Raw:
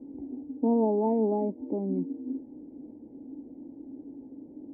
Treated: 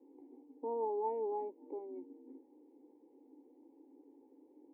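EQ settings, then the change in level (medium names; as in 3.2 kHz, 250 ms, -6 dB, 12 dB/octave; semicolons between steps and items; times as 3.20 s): high-pass 550 Hz 12 dB/octave; static phaser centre 960 Hz, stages 8; -3.0 dB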